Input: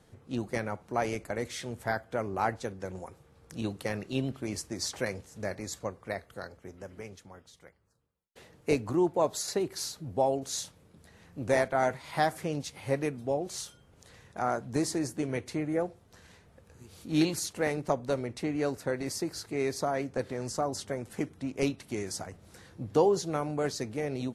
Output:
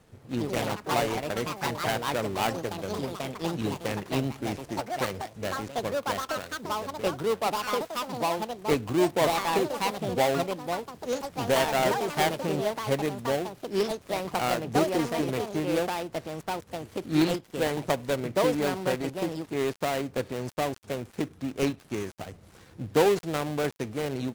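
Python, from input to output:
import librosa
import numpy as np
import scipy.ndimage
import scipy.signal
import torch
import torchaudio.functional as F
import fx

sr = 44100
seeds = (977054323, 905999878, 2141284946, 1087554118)

y = fx.dead_time(x, sr, dead_ms=0.23)
y = fx.echo_pitch(y, sr, ms=143, semitones=4, count=3, db_per_echo=-3.0)
y = y * librosa.db_to_amplitude(2.5)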